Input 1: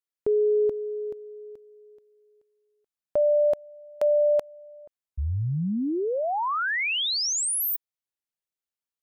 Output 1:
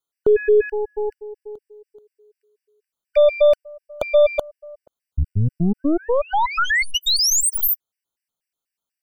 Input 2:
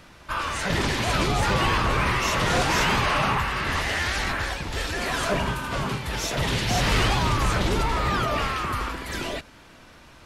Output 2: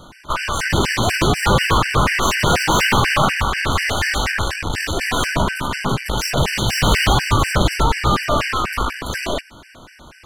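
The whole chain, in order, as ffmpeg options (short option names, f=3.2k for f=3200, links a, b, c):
-af "aeval=exprs='0.2*(cos(1*acos(clip(val(0)/0.2,-1,1)))-cos(1*PI/2))+0.0178*(cos(8*acos(clip(val(0)/0.2,-1,1)))-cos(8*PI/2))':c=same,afftfilt=real='re*gt(sin(2*PI*4.1*pts/sr)*(1-2*mod(floor(b*sr/1024/1500),2)),0)':imag='im*gt(sin(2*PI*4.1*pts/sr)*(1-2*mod(floor(b*sr/1024/1500),2)),0)':win_size=1024:overlap=0.75,volume=9dB"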